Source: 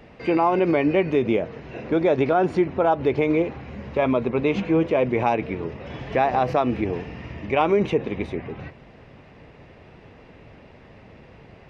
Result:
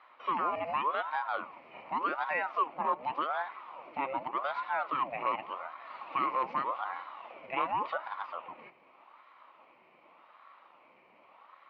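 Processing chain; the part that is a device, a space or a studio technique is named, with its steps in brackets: voice changer toy (ring modulator with a swept carrier 750 Hz, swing 65%, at 0.86 Hz; speaker cabinet 410–3800 Hz, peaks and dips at 430 Hz -10 dB, 750 Hz -3 dB, 1100 Hz +6 dB, 1600 Hz -10 dB, 2300 Hz +7 dB, 3400 Hz -8 dB); gain -7.5 dB

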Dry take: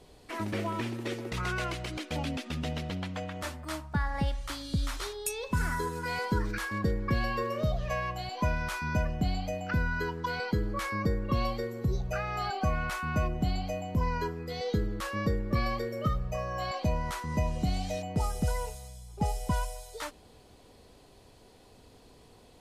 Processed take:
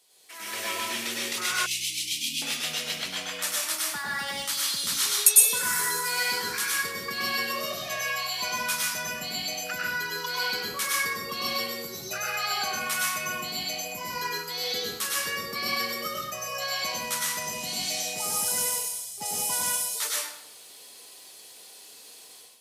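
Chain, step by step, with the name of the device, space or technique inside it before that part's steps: far laptop microphone (reverb RT60 0.75 s, pre-delay 95 ms, DRR -4 dB; HPF 130 Hz 12 dB/oct; AGC gain up to 11.5 dB); 1.66–2.42 inverse Chebyshev band-stop 540–1400 Hz, stop band 50 dB; differentiator; gain +3.5 dB

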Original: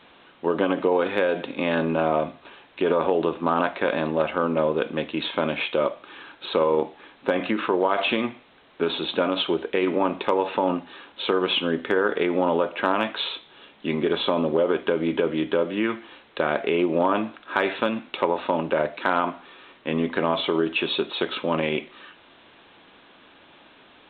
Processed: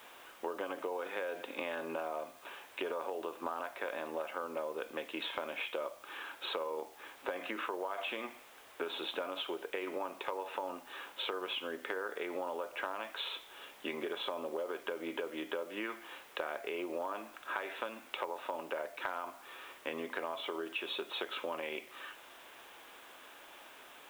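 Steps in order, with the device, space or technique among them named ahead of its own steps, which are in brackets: baby monitor (BPF 480–3400 Hz; compressor, threshold -35 dBFS, peak gain reduction 16.5 dB; white noise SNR 22 dB); gain -1 dB

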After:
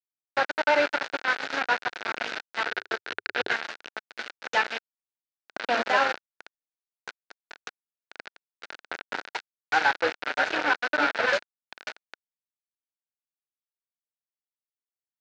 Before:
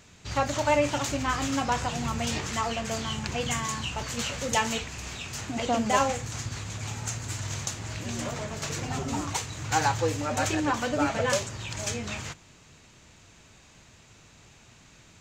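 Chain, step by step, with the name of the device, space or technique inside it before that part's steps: hand-held game console (bit-crush 4-bit; speaker cabinet 420–4000 Hz, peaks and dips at 1100 Hz -6 dB, 1500 Hz +9 dB, 3200 Hz -5 dB); 2.67–3.56 fifteen-band EQ 100 Hz +8 dB, 400 Hz +11 dB, 1600 Hz +7 dB, 4000 Hz +3 dB, 10000 Hz -4 dB; gain +1.5 dB

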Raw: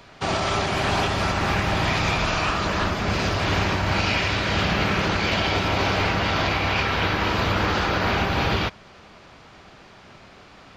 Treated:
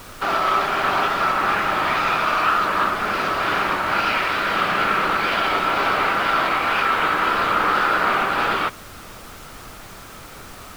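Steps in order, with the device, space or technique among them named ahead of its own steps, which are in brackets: horn gramophone (BPF 280–3900 Hz; bell 1300 Hz +11 dB 0.54 oct; wow and flutter; pink noise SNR 19 dB)

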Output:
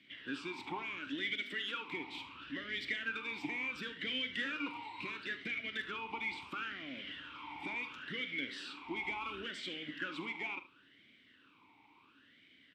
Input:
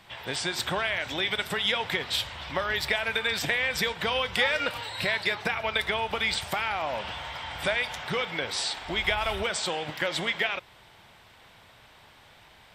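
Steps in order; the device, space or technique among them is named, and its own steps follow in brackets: 1.33–1.88 steep high-pass 200 Hz 36 dB/oct; talk box (tube stage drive 23 dB, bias 0.35; vowel sweep i-u 0.72 Hz); early reflections 44 ms -15 dB, 75 ms -15 dB; gain +5 dB

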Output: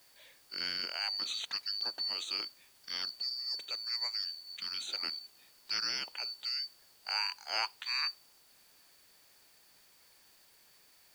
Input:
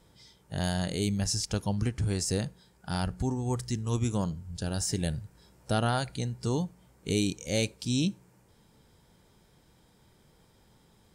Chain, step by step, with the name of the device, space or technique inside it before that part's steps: split-band scrambled radio (four-band scrambler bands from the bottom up 2341; BPF 370–3100 Hz; white noise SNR 25 dB)

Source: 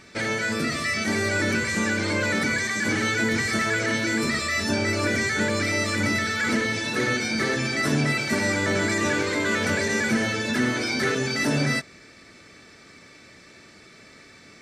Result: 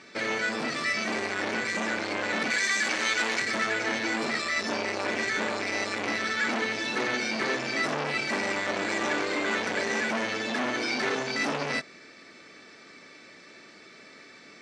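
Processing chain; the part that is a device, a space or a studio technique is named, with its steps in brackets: public-address speaker with an overloaded transformer (core saturation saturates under 1500 Hz; BPF 230–6000 Hz); 2.5–3.42 tilt +2.5 dB/oct

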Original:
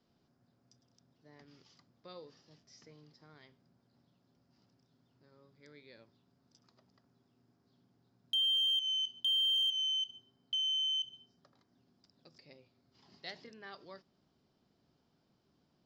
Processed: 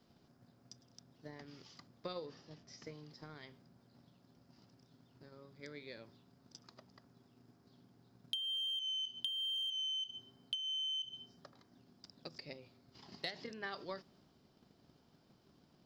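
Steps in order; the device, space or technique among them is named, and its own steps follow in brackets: drum-bus smash (transient shaper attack +8 dB, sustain +3 dB; compressor 12:1, threshold -42 dBFS, peak gain reduction 19 dB; soft clip -29.5 dBFS, distortion -26 dB); 2.26–2.82 high shelf 3700 Hz -7.5 dB; gain +5 dB

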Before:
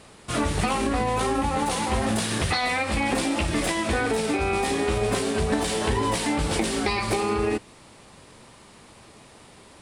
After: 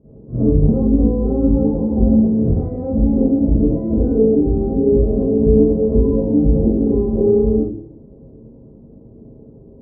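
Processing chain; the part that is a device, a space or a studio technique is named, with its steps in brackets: next room (LPF 430 Hz 24 dB/oct; reverb RT60 0.60 s, pre-delay 41 ms, DRR -11 dB); gain -1 dB

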